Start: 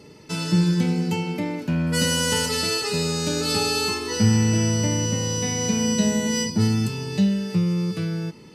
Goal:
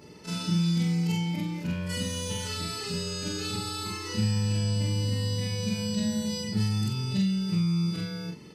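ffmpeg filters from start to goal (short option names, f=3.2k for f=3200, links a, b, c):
-filter_complex "[0:a]afftfilt=real='re':imag='-im':win_size=4096:overlap=0.75,acrossover=split=280|1800|4400[a][b][c][d];[a]acompressor=threshold=-27dB:ratio=4[e];[b]acompressor=threshold=-46dB:ratio=4[f];[c]acompressor=threshold=-39dB:ratio=4[g];[d]acompressor=threshold=-45dB:ratio=4[h];[e][f][g][h]amix=inputs=4:normalize=0,volume=2.5dB"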